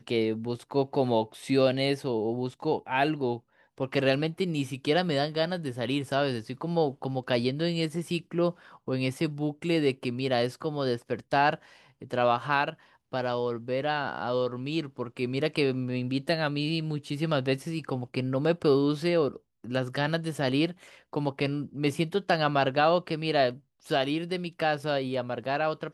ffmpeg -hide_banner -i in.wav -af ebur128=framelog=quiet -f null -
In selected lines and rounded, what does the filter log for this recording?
Integrated loudness:
  I:         -28.5 LUFS
  Threshold: -38.7 LUFS
Loudness range:
  LRA:         2.5 LU
  Threshold: -48.7 LUFS
  LRA low:   -29.7 LUFS
  LRA high:  -27.2 LUFS